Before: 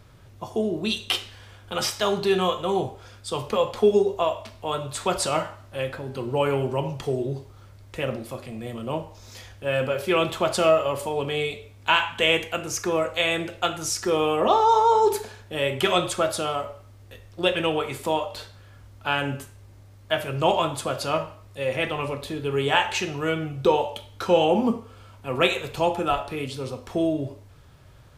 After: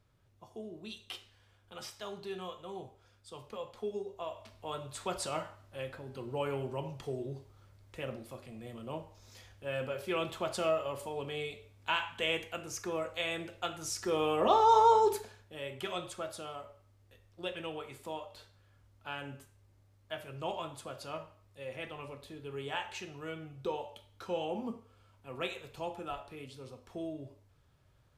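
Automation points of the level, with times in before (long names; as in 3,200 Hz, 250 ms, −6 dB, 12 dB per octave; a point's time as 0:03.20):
0:04.11 −19.5 dB
0:04.52 −12 dB
0:13.69 −12 dB
0:14.86 −4 dB
0:15.55 −16.5 dB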